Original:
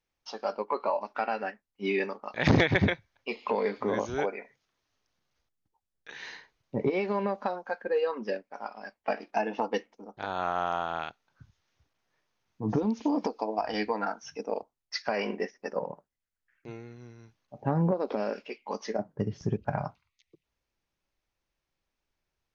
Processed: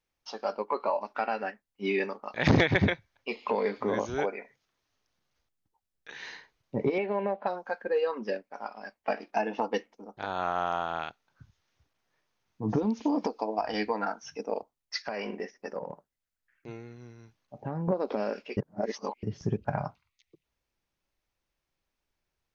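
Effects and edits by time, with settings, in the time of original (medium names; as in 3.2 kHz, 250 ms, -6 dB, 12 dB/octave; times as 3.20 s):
6.98–7.47 s: cabinet simulation 160–3000 Hz, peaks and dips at 250 Hz -9 dB, 680 Hz +5 dB, 1.2 kHz -9 dB
15.03–17.88 s: compression 2.5:1, threshold -32 dBFS
18.57–19.23 s: reverse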